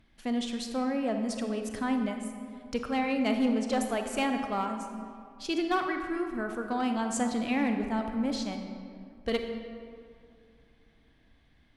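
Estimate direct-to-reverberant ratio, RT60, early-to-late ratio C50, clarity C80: 5.0 dB, 2.3 s, 5.5 dB, 7.0 dB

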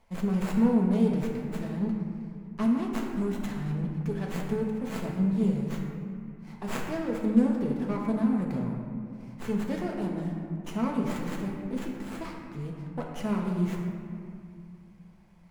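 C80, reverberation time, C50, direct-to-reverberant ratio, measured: 4.0 dB, 2.3 s, 2.5 dB, -1.0 dB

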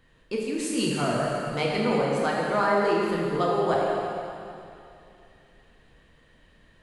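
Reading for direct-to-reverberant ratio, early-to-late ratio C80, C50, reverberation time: -4.0 dB, 0.0 dB, -1.0 dB, 2.7 s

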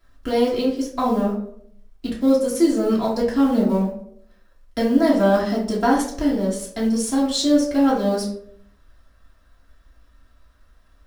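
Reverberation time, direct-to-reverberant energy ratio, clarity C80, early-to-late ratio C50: 0.65 s, -7.0 dB, 10.0 dB, 5.5 dB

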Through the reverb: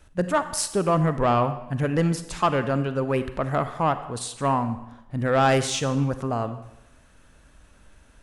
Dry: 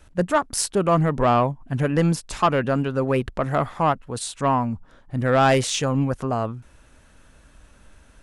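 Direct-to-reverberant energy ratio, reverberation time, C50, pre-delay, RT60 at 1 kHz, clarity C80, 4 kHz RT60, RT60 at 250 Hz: 10.5 dB, 0.90 s, 11.5 dB, 37 ms, 0.95 s, 13.5 dB, 0.80 s, 0.85 s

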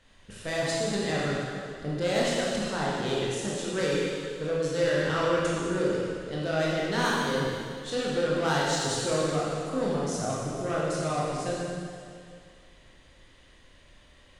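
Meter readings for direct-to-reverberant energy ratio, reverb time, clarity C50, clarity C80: -6.0 dB, 2.2 s, -2.5 dB, -0.5 dB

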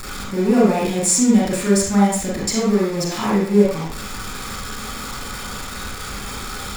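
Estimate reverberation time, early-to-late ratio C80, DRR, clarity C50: 0.45 s, 6.0 dB, -4.0 dB, 1.5 dB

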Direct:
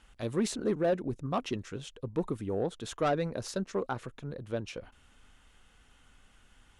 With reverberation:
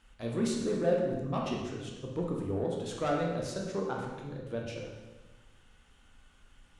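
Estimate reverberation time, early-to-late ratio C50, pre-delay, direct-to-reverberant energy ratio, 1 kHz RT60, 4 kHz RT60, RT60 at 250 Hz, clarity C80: 1.2 s, 2.0 dB, 12 ms, -1.5 dB, 1.1 s, 1.0 s, 1.5 s, 4.5 dB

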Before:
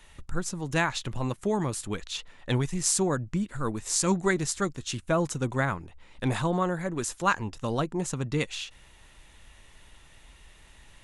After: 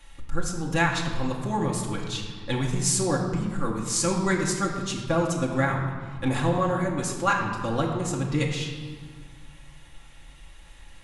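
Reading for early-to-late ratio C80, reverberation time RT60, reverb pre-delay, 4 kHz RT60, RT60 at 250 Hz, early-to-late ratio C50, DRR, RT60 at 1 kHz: 5.5 dB, 1.7 s, 3 ms, 1.2 s, 2.4 s, 4.0 dB, -2.5 dB, 1.7 s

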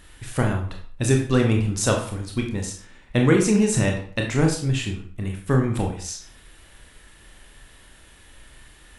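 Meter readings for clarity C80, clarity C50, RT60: 11.0 dB, 6.5 dB, 0.50 s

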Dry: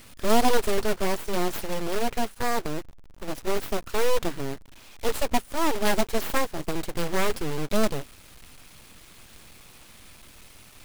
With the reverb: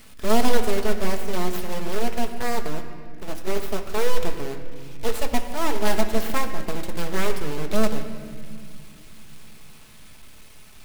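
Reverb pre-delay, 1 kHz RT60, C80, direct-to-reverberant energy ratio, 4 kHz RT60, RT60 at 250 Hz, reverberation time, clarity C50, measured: 5 ms, 1.9 s, 9.5 dB, 5.0 dB, 1.5 s, 3.9 s, 2.2 s, 8.5 dB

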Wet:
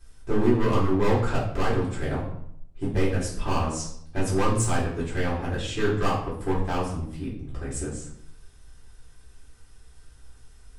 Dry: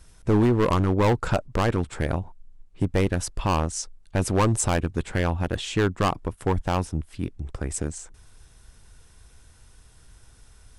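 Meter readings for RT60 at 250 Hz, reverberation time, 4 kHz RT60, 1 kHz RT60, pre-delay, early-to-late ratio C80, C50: 0.80 s, 0.70 s, 0.55 s, 0.70 s, 3 ms, 8.5 dB, 5.0 dB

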